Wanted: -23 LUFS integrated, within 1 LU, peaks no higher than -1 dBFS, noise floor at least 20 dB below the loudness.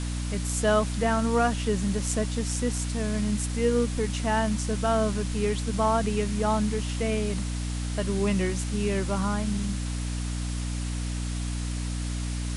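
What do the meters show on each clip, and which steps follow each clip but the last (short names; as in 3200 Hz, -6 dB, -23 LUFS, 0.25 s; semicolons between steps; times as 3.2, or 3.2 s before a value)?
hum 60 Hz; harmonics up to 300 Hz; hum level -28 dBFS; noise floor -31 dBFS; noise floor target -48 dBFS; loudness -27.5 LUFS; peak -11.5 dBFS; loudness target -23.0 LUFS
-> notches 60/120/180/240/300 Hz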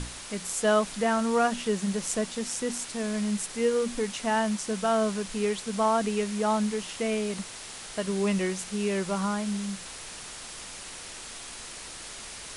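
hum none; noise floor -42 dBFS; noise floor target -49 dBFS
-> denoiser 7 dB, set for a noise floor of -42 dBFS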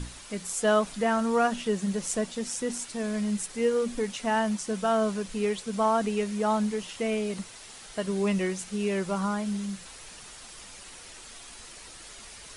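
noise floor -46 dBFS; noise floor target -49 dBFS
-> denoiser 6 dB, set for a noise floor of -46 dBFS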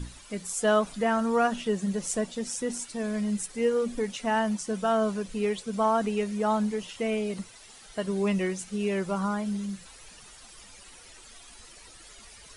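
noise floor -50 dBFS; loudness -28.5 LUFS; peak -12.5 dBFS; loudness target -23.0 LUFS
-> gain +5.5 dB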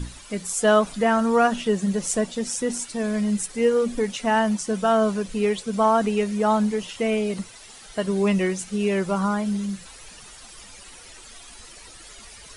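loudness -23.0 LUFS; peak -7.0 dBFS; noise floor -45 dBFS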